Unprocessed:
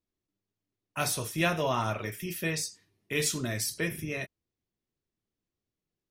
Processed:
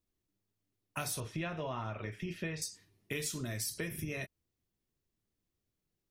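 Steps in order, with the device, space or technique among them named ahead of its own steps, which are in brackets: 1.2–2.62 LPF 3200 Hz 12 dB/oct; ASMR close-microphone chain (low shelf 120 Hz +6.5 dB; compressor 10:1, threshold -35 dBFS, peak gain reduction 13 dB; high shelf 7100 Hz +4 dB)

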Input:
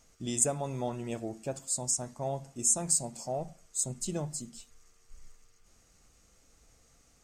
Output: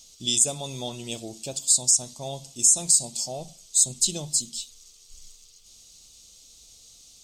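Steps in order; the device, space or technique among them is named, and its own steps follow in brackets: over-bright horn tweeter (resonant high shelf 2500 Hz +13.5 dB, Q 3; limiter -7.5 dBFS, peak gain reduction 10.5 dB)

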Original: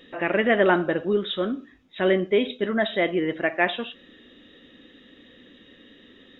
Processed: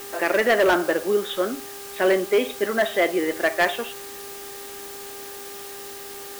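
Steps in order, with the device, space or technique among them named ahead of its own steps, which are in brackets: aircraft radio (BPF 380–2600 Hz; hard clip -17 dBFS, distortion -14 dB; buzz 400 Hz, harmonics 4, -46 dBFS -7 dB/oct; white noise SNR 15 dB); gain +4.5 dB

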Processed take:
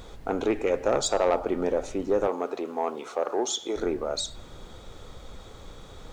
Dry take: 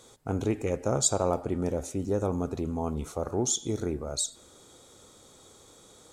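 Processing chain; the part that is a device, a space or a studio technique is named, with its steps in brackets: aircraft cabin announcement (BPF 380–3500 Hz; soft clip -22.5 dBFS, distortion -15 dB; brown noise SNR 14 dB); 2.27–3.76 HPF 350 Hz 12 dB/oct; gain +8.5 dB

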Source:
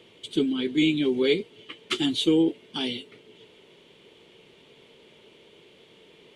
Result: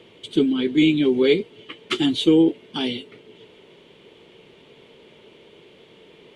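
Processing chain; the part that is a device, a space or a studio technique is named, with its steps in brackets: behind a face mask (high shelf 3500 Hz -7.5 dB); gain +5.5 dB

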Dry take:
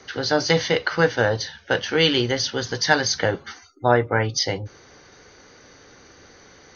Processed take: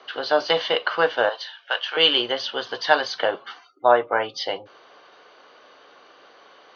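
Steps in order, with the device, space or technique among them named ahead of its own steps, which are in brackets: phone earpiece (speaker cabinet 440–4000 Hz, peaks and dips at 650 Hz +7 dB, 1100 Hz +8 dB, 2000 Hz -6 dB, 3000 Hz +7 dB); 1.29–1.97 HPF 930 Hz 12 dB/oct; gain -1 dB

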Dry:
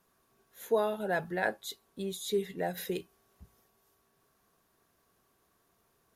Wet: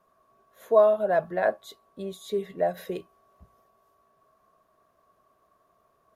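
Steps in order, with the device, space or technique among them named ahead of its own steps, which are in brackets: inside a helmet (high shelf 3500 Hz -8.5 dB; small resonant body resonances 630/1100 Hz, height 15 dB, ringing for 30 ms)

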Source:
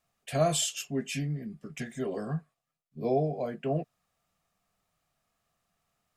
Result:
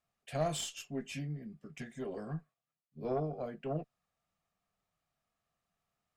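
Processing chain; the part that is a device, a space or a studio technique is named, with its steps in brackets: tube preamp driven hard (tube stage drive 18 dB, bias 0.6; high shelf 6800 Hz -7 dB); gain -4 dB

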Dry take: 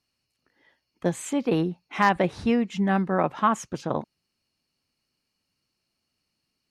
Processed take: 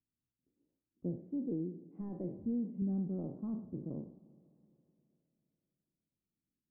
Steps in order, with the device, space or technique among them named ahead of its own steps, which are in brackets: spectral trails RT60 0.47 s; 1.16–2.82 weighting filter D; Schroeder reverb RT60 3.2 s, combs from 29 ms, DRR 16.5 dB; overdriven synthesiser ladder filter (soft clip -10.5 dBFS, distortion -15 dB; ladder low-pass 390 Hz, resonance 25%); gain -5.5 dB

